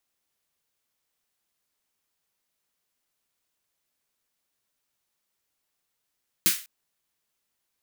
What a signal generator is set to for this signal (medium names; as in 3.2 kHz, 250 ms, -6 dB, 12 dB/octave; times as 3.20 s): snare drum length 0.20 s, tones 190 Hz, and 330 Hz, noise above 1.5 kHz, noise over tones 11.5 dB, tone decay 0.13 s, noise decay 0.35 s